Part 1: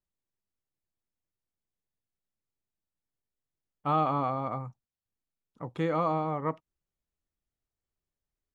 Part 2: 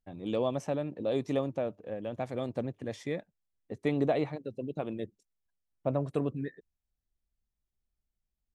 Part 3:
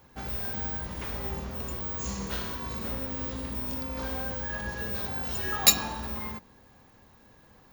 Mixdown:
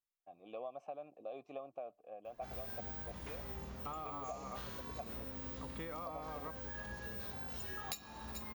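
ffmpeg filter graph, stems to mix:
ffmpeg -i stem1.wav -i stem2.wav -i stem3.wav -filter_complex "[0:a]lowshelf=frequency=470:gain=-12,alimiter=level_in=0.5dB:limit=-24dB:level=0:latency=1,volume=-0.5dB,volume=-5dB[link_01];[1:a]asplit=3[link_02][link_03][link_04];[link_02]bandpass=frequency=730:width_type=q:width=8,volume=0dB[link_05];[link_03]bandpass=frequency=1090:width_type=q:width=8,volume=-6dB[link_06];[link_04]bandpass=frequency=2440:width_type=q:width=8,volume=-9dB[link_07];[link_05][link_06][link_07]amix=inputs=3:normalize=0,adelay=200,volume=-0.5dB[link_08];[2:a]adelay=2250,volume=-10.5dB,asplit=2[link_09][link_10];[link_10]volume=-21dB,aecho=0:1:433:1[link_11];[link_01][link_08][link_09][link_11]amix=inputs=4:normalize=0,acompressor=threshold=-40dB:ratio=16" out.wav

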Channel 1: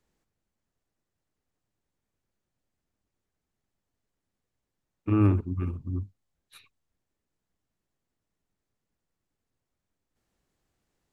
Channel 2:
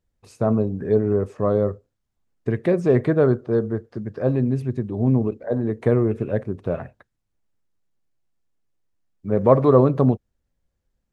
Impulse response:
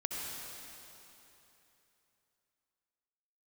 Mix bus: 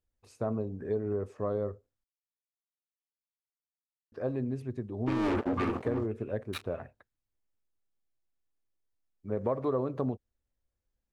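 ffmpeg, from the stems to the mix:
-filter_complex "[0:a]highpass=140,aeval=exprs='sgn(val(0))*max(abs(val(0))-0.00266,0)':channel_layout=same,asplit=2[link_01][link_02];[link_02]highpass=frequency=720:poles=1,volume=35dB,asoftclip=type=tanh:threshold=-13.5dB[link_03];[link_01][link_03]amix=inputs=2:normalize=0,lowpass=frequency=2100:poles=1,volume=-6dB,volume=-1dB[link_04];[1:a]volume=-9dB,asplit=3[link_05][link_06][link_07];[link_05]atrim=end=2.04,asetpts=PTS-STARTPTS,afade=type=out:start_time=2.036:duration=0.004:curve=hsin[link_08];[link_06]atrim=start=2.04:end=4.12,asetpts=PTS-STARTPTS,volume=0[link_09];[link_07]atrim=start=4.12,asetpts=PTS-STARTPTS,afade=type=in:duration=0.004:curve=hsin[link_10];[link_08][link_09][link_10]concat=n=3:v=0:a=1,asplit=2[link_11][link_12];[link_12]apad=whole_len=490685[link_13];[link_04][link_13]sidechaincompress=threshold=-28dB:ratio=8:attack=41:release=189[link_14];[link_14][link_11]amix=inputs=2:normalize=0,equalizer=frequency=160:width=2.3:gain=-8,acompressor=threshold=-27dB:ratio=4"

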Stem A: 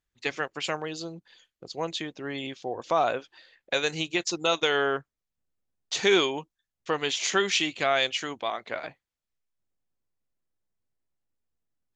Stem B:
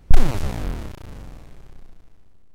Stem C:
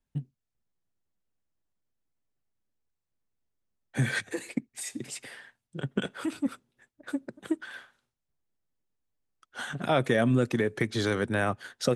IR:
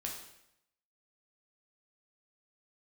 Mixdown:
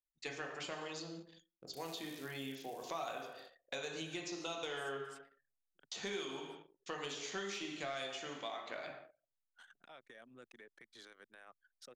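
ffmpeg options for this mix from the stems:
-filter_complex "[0:a]asoftclip=type=tanh:threshold=-10.5dB,volume=-2.5dB,asplit=2[link_01][link_02];[link_02]volume=-6.5dB[link_03];[1:a]alimiter=limit=-12dB:level=0:latency=1:release=180,crystalizer=i=3.5:c=0,adelay=1600,volume=-17dB[link_04];[2:a]highpass=frequency=1400:poles=1,alimiter=level_in=0.5dB:limit=-24dB:level=0:latency=1:release=137,volume=-0.5dB,volume=-20dB[link_05];[link_01][link_04]amix=inputs=2:normalize=0,aderivative,acompressor=threshold=-39dB:ratio=6,volume=0dB[link_06];[3:a]atrim=start_sample=2205[link_07];[link_03][link_07]afir=irnorm=-1:irlink=0[link_08];[link_05][link_06][link_08]amix=inputs=3:normalize=0,anlmdn=0.0001,equalizer=frequency=99:width=6.2:gain=-12,acrossover=split=1300|5600[link_09][link_10][link_11];[link_09]acompressor=threshold=-42dB:ratio=4[link_12];[link_10]acompressor=threshold=-47dB:ratio=4[link_13];[link_11]acompressor=threshold=-57dB:ratio=4[link_14];[link_12][link_13][link_14]amix=inputs=3:normalize=0"

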